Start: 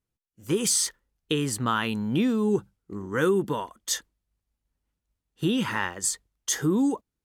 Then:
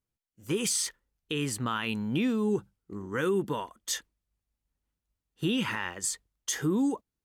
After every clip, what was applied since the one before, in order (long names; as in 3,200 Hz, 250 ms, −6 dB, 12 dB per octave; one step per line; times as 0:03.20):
dynamic equaliser 2,500 Hz, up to +6 dB, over −45 dBFS, Q 2.1
brickwall limiter −15.5 dBFS, peak gain reduction 6 dB
level −3.5 dB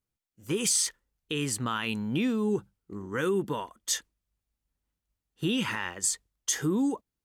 dynamic equaliser 7,200 Hz, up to +4 dB, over −43 dBFS, Q 0.74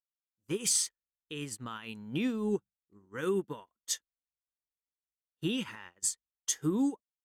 expander for the loud parts 2.5 to 1, over −44 dBFS
level −1 dB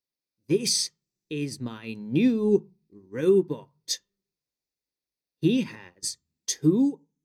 fade-out on the ending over 0.65 s
convolution reverb RT60 0.30 s, pre-delay 3 ms, DRR 15 dB